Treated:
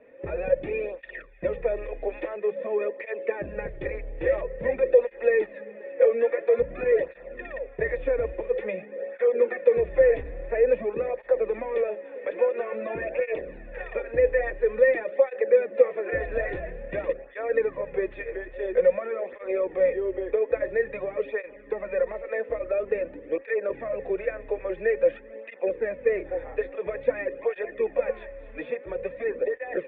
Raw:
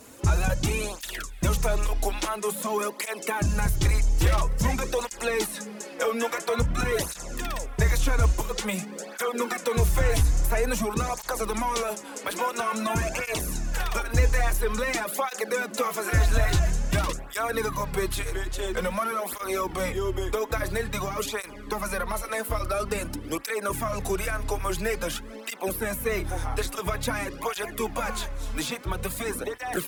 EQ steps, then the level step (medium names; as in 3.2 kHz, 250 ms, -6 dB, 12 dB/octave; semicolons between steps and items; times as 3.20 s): dynamic bell 430 Hz, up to +7 dB, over -41 dBFS, Q 1.2; cascade formant filter e; peaking EQ 86 Hz -8.5 dB 1.8 oct; +8.5 dB